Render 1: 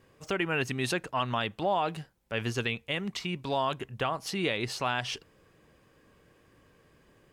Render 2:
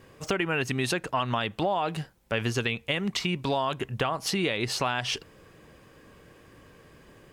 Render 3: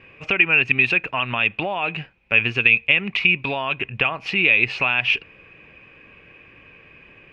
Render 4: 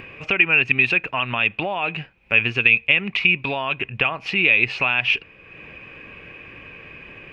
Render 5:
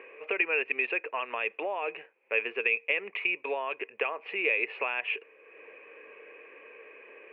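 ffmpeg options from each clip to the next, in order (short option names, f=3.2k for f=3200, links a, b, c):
-af "acompressor=threshold=-33dB:ratio=4,volume=8.5dB"
-af "lowpass=f=2.5k:t=q:w=14"
-af "acompressor=mode=upward:threshold=-32dB:ratio=2.5"
-af "highpass=f=400:w=0.5412,highpass=f=400:w=1.3066,equalizer=f=450:t=q:w=4:g=9,equalizer=f=760:t=q:w=4:g=-4,equalizer=f=1.4k:t=q:w=4:g=-6,lowpass=f=2.2k:w=0.5412,lowpass=f=2.2k:w=1.3066,volume=-6dB"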